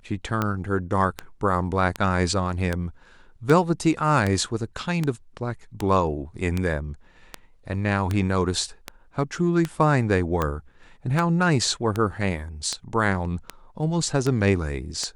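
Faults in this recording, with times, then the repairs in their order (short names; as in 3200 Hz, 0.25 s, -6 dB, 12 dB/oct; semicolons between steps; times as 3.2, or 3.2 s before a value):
tick 78 rpm -11 dBFS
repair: de-click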